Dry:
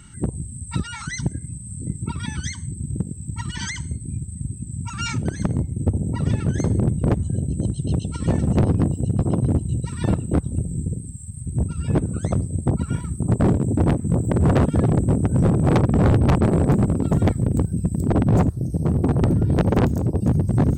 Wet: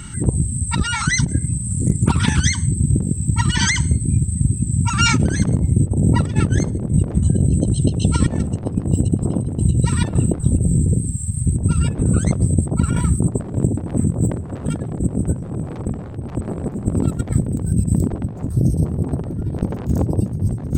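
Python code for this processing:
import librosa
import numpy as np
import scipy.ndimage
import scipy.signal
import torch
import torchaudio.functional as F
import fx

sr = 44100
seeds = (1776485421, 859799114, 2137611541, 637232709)

y = fx.doppler_dist(x, sr, depth_ms=0.41, at=(1.63, 2.4))
y = fx.over_compress(y, sr, threshold_db=-24.0, ratio=-0.5)
y = F.gain(torch.from_numpy(y), 7.0).numpy()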